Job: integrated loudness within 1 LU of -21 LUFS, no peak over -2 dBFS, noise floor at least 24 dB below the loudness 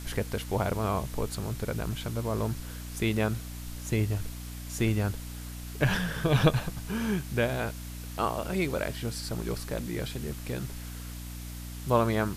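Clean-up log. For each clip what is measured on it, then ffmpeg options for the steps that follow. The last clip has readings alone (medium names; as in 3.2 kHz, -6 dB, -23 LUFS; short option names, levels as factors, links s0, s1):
hum 60 Hz; highest harmonic 300 Hz; hum level -37 dBFS; noise floor -40 dBFS; noise floor target -55 dBFS; loudness -31.0 LUFS; peak level -9.0 dBFS; loudness target -21.0 LUFS
-> -af "bandreject=f=60:t=h:w=4,bandreject=f=120:t=h:w=4,bandreject=f=180:t=h:w=4,bandreject=f=240:t=h:w=4,bandreject=f=300:t=h:w=4"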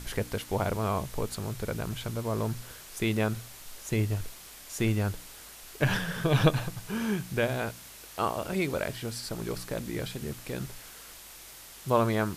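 hum not found; noise floor -48 dBFS; noise floor target -55 dBFS
-> -af "afftdn=nr=7:nf=-48"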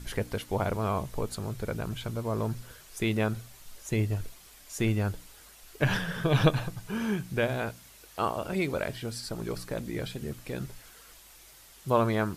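noise floor -54 dBFS; noise floor target -55 dBFS
-> -af "afftdn=nr=6:nf=-54"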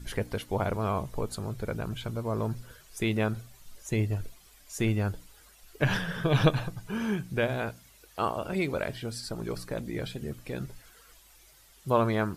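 noise floor -57 dBFS; loudness -31.0 LUFS; peak level -10.0 dBFS; loudness target -21.0 LUFS
-> -af "volume=3.16,alimiter=limit=0.794:level=0:latency=1"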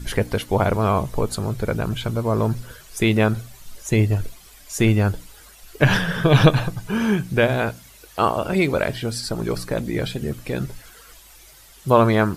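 loudness -21.5 LUFS; peak level -2.0 dBFS; noise floor -47 dBFS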